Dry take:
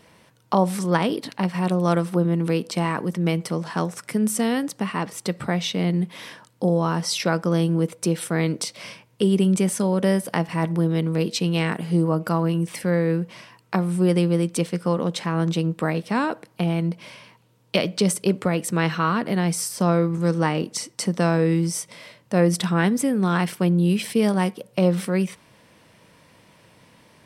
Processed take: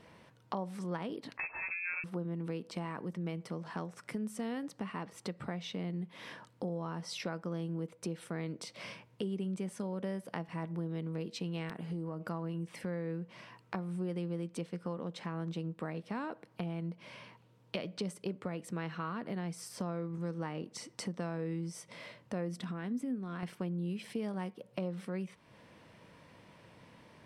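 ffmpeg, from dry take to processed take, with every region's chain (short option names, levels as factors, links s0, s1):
-filter_complex "[0:a]asettb=1/sr,asplit=3[s0][s1][s2];[s0]atrim=end=1.374[s3];[s1]atrim=start=1.37:end=2.04,asetpts=PTS-STARTPTS,afade=t=in:d=0.004:c=qsin,afade=t=out:st=0.666:d=0.004:c=qsin,bandreject=f=880:w=10,asplit=2[s4][s5];[s5]adelay=14,volume=0.596[s6];[s4][s6]amix=inputs=2:normalize=0,atrim=end_sample=29547,lowpass=f=2400:t=q:w=0.5098,lowpass=f=2400:t=q:w=0.6013,lowpass=f=2400:t=q:w=0.9,lowpass=f=2400:t=q:w=2.563,afreqshift=-2800[s7];[s2]atrim=start=2.036[s8];[s3][s7]acrossfade=d=0.004:c1=hsin:c2=qsin[s9];[s9][s8]acrossfade=d=0.004:c1=qsin:c2=hsin,asettb=1/sr,asplit=3[s10][s11][s12];[s10]atrim=end=11.694[s13];[s11]atrim=start=11.69:end=12.21,asetpts=PTS-STARTPTS,afade=t=in:d=0.004:c=qsin,afade=t=out:st=0.516:d=0.004:c=qsin,acompressor=threshold=0.0794:ratio=3:attack=3.2:release=140:knee=1:detection=peak,aeval=exprs='(mod(3.98*val(0)+1,2)-1)/3.98':c=same[s14];[s12]atrim=start=12.206[s15];[s13][s14]acrossfade=d=0.004:c1=hsin:c2=qsin[s16];[s16][s15]acrossfade=d=0.004:c1=qsin:c2=hsin,asettb=1/sr,asplit=3[s17][s18][s19];[s17]atrim=end=22.564[s20];[s18]atrim=start=22.56:end=23.43,asetpts=PTS-STARTPTS,afade=t=in:d=0.004:c=qsin,afade=t=out:st=0.866:d=0.004:c=qsin,acompressor=threshold=0.0794:ratio=6:attack=3.2:release=140:knee=1:detection=peak,equalizer=f=250:t=o:w=0.26:g=12.5,bandreject=f=870:w=17[s21];[s19]atrim=start=23.426[s22];[s20][s21]acrossfade=d=0.004:c1=hsin:c2=qsin[s23];[s23][s22]acrossfade=d=0.004:c1=qsin:c2=hsin,lowpass=f=2900:p=1,acompressor=threshold=0.0126:ratio=2.5,volume=0.668"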